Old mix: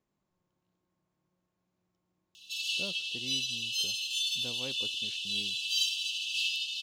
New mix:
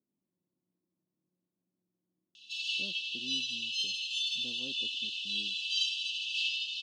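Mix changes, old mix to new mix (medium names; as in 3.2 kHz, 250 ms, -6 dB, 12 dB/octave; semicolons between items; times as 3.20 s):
speech: add band-pass filter 260 Hz, Q 2; background: add low-pass 4.6 kHz 12 dB/octave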